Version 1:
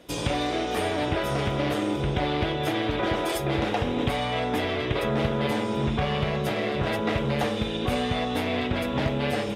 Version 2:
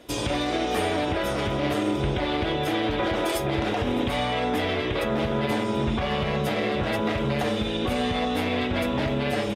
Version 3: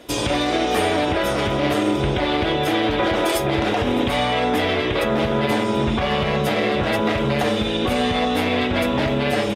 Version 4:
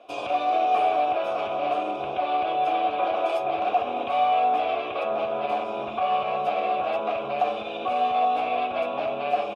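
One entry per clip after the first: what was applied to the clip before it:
limiter -18 dBFS, peak gain reduction 5 dB; flange 0.54 Hz, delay 2.9 ms, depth 1.1 ms, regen -70%; echo 0.612 s -22 dB; gain +6.5 dB
low shelf 180 Hz -3.5 dB; gain +6 dB
vowel filter a; gain +4.5 dB

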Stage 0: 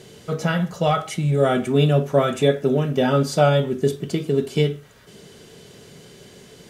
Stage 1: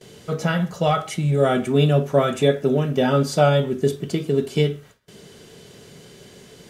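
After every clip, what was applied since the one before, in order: gate with hold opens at -37 dBFS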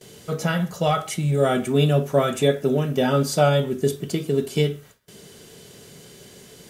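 high shelf 8300 Hz +11.5 dB; gain -1.5 dB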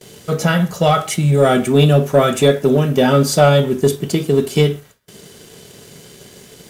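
sample leveller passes 1; gain +4 dB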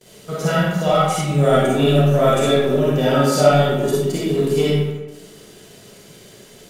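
reverb RT60 1.1 s, pre-delay 10 ms, DRR -7 dB; gain -9.5 dB

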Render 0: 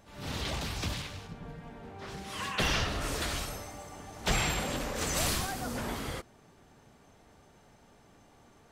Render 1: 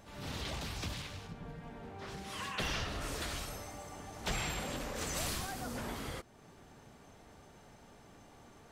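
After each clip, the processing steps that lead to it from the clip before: compressor 1.5:1, threshold -52 dBFS, peak gain reduction 10.5 dB; gain +2 dB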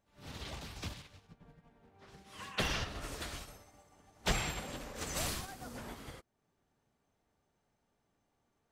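upward expander 2.5:1, over -51 dBFS; gain +6 dB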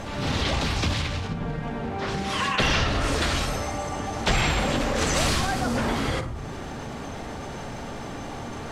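air absorption 60 m; on a send at -12 dB: reverb RT60 0.40 s, pre-delay 4 ms; on the sum: fast leveller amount 70%; gain +8.5 dB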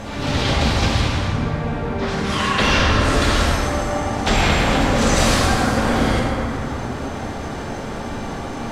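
plate-style reverb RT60 3.2 s, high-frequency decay 0.45×, DRR -3 dB; gain +2 dB

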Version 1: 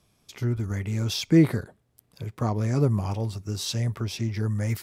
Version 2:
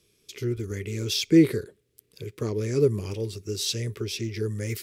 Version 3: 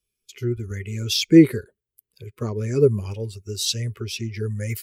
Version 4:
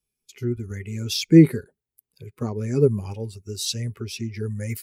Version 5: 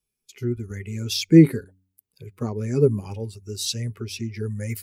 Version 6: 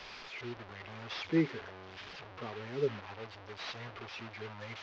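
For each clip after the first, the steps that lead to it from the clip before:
EQ curve 250 Hz 0 dB, 420 Hz +14 dB, 730 Hz -12 dB, 2400 Hz +8 dB; gain -5 dB
per-bin expansion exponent 1.5; gain +6 dB
thirty-one-band EQ 160 Hz +8 dB, 250 Hz +7 dB, 800 Hz +10 dB, 3150 Hz -4 dB, 10000 Hz +3 dB; gain -3 dB
de-hum 93.81 Hz, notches 3
delta modulation 32 kbps, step -28 dBFS; three-band isolator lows -14 dB, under 480 Hz, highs -20 dB, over 3800 Hz; mismatched tape noise reduction decoder only; gain -7 dB

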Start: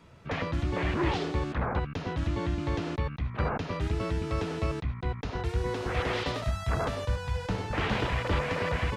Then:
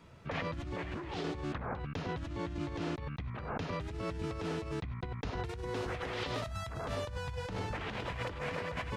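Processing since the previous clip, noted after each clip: negative-ratio compressor -33 dBFS, ratio -1; gain -5 dB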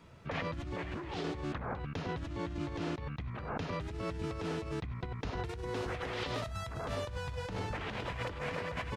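echo 0.96 s -23.5 dB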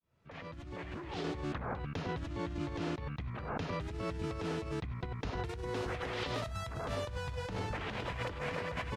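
opening faded in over 1.30 s

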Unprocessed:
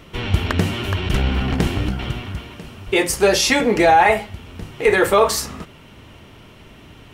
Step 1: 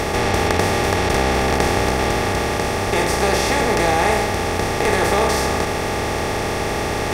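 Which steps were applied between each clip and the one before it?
per-bin compression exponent 0.2; gain -11 dB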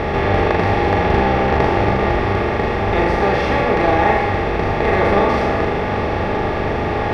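air absorption 360 m; flutter echo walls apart 6.9 m, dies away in 0.51 s; gain +2 dB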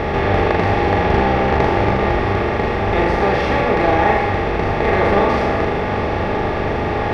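Doppler distortion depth 0.12 ms

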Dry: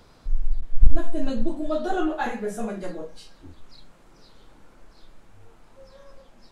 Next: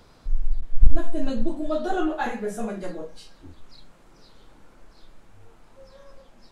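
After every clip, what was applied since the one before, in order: nothing audible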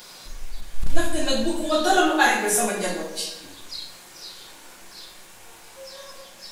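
tilt +4.5 dB/oct; notch 1300 Hz, Q 16; reverb RT60 0.95 s, pre-delay 5 ms, DRR 2 dB; gain +7.5 dB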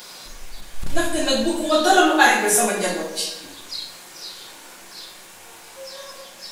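low shelf 94 Hz -9.5 dB; gain +4 dB

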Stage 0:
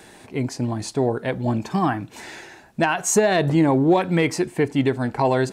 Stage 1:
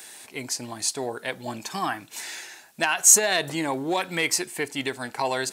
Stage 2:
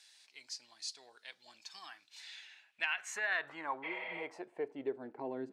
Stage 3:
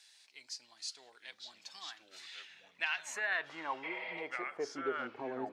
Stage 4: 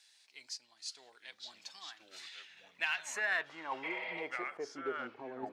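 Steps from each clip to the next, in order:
tilt +4.5 dB/oct; gain -4 dB
spectral repair 3.86–4.2, 490–5600 Hz after; band-pass sweep 4800 Hz -> 280 Hz, 2.02–5.39; tone controls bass +1 dB, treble -10 dB; gain -4 dB
echoes that change speed 0.773 s, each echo -4 st, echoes 3, each echo -6 dB
random-step tremolo; in parallel at -12 dB: hard clip -35 dBFS, distortion -9 dB

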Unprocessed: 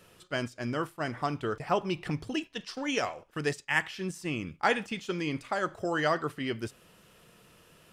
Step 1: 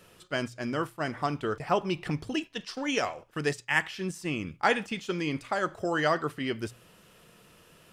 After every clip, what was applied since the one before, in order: notches 60/120 Hz; gain +1.5 dB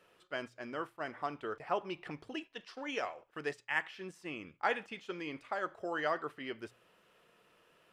tone controls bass -13 dB, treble -11 dB; gain -7 dB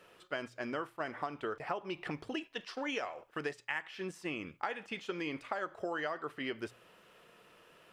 compressor 12:1, threshold -39 dBFS, peak gain reduction 13.5 dB; gain +6 dB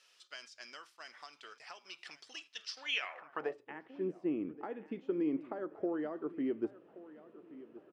feedback echo 1.126 s, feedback 39%, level -17.5 dB; band-pass sweep 5400 Hz -> 300 Hz, 2.75–3.74; gain +8.5 dB

